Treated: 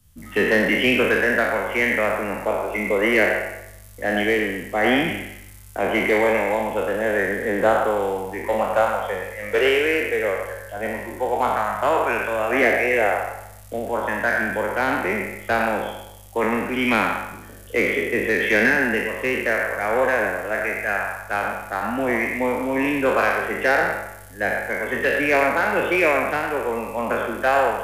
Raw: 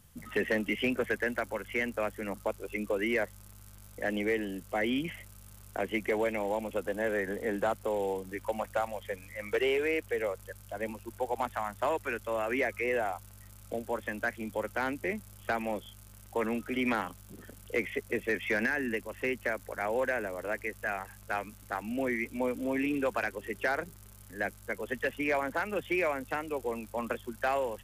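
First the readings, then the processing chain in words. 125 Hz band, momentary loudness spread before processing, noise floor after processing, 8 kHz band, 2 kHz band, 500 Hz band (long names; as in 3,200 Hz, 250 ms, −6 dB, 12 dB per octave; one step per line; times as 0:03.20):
+10.0 dB, 10 LU, −42 dBFS, +10.0 dB, +13.5 dB, +11.0 dB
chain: peak hold with a decay on every bin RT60 1.01 s
delay with a band-pass on its return 106 ms, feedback 35%, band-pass 1,200 Hz, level −4 dB
multiband upward and downward expander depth 40%
level +8 dB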